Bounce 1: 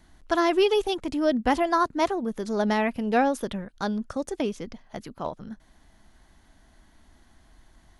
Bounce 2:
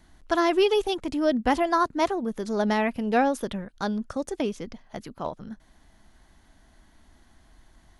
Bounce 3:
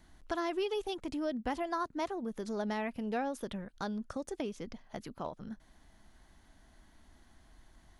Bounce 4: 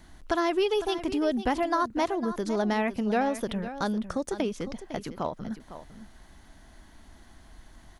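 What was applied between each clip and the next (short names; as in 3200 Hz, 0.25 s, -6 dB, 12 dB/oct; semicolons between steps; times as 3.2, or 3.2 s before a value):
nothing audible
compressor 2:1, threshold -34 dBFS, peak gain reduction 9.5 dB; gain -4 dB
echo 0.505 s -12.5 dB; gain +8.5 dB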